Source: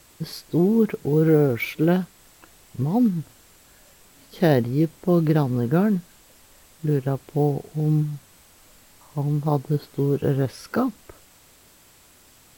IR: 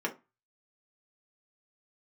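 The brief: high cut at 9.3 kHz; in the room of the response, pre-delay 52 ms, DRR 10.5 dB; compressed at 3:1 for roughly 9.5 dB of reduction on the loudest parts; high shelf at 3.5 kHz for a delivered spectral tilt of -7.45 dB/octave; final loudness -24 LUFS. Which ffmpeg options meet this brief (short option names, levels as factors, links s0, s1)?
-filter_complex "[0:a]lowpass=9300,highshelf=f=3500:g=-4.5,acompressor=threshold=0.0447:ratio=3,asplit=2[s0][s1];[1:a]atrim=start_sample=2205,adelay=52[s2];[s1][s2]afir=irnorm=-1:irlink=0,volume=0.141[s3];[s0][s3]amix=inputs=2:normalize=0,volume=2"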